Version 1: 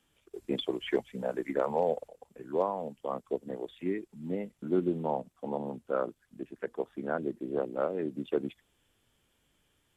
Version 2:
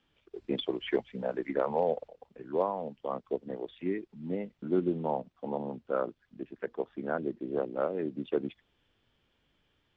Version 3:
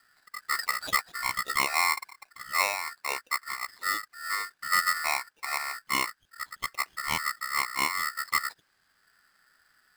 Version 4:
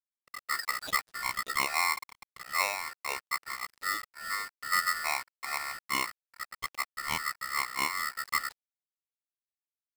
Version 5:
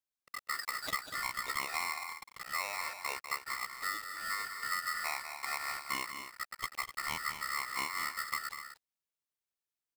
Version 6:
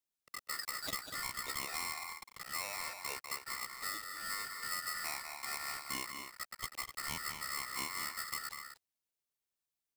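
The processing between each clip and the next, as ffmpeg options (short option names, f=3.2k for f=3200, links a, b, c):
-af "lowpass=f=4.8k:w=0.5412,lowpass=f=4.8k:w=1.3066"
-filter_complex "[0:a]acrossover=split=110|270|1600[a][b][c][d];[b]acompressor=mode=upward:threshold=-57dB:ratio=2.5[e];[a][e][c][d]amix=inputs=4:normalize=0,aeval=exprs='val(0)*sgn(sin(2*PI*1600*n/s))':c=same,volume=2.5dB"
-af "acrusher=bits=6:mix=0:aa=0.5,volume=-3dB"
-filter_complex "[0:a]acompressor=threshold=-33dB:ratio=6,asplit=2[a][b];[b]aecho=0:1:195.3|250.7:0.355|0.282[c];[a][c]amix=inputs=2:normalize=0"
-filter_complex "[0:a]equalizer=f=1.5k:w=0.52:g=-4,acrossover=split=410|3200[a][b][c];[b]asoftclip=type=tanh:threshold=-39dB[d];[a][d][c]amix=inputs=3:normalize=0,volume=1.5dB"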